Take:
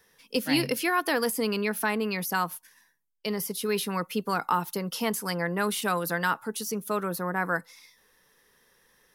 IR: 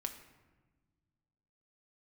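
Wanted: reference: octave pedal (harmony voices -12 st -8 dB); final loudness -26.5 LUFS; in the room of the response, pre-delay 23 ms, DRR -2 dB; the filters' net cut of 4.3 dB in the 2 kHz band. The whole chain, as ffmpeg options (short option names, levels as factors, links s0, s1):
-filter_complex "[0:a]equalizer=f=2000:t=o:g=-6,asplit=2[s0][s1];[1:a]atrim=start_sample=2205,adelay=23[s2];[s1][s2]afir=irnorm=-1:irlink=0,volume=1.41[s3];[s0][s3]amix=inputs=2:normalize=0,asplit=2[s4][s5];[s5]asetrate=22050,aresample=44100,atempo=2,volume=0.398[s6];[s4][s6]amix=inputs=2:normalize=0,volume=0.794"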